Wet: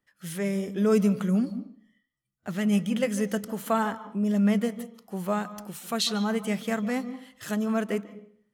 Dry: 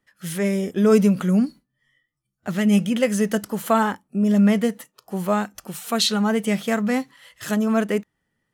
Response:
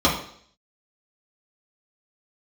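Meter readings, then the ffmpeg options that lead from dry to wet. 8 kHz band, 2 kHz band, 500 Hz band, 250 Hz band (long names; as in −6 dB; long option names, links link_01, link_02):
−6.5 dB, −6.5 dB, −6.5 dB, −6.0 dB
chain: -filter_complex "[0:a]asplit=2[link_01][link_02];[1:a]atrim=start_sample=2205,adelay=144[link_03];[link_02][link_03]afir=irnorm=-1:irlink=0,volume=-33.5dB[link_04];[link_01][link_04]amix=inputs=2:normalize=0,volume=-6.5dB"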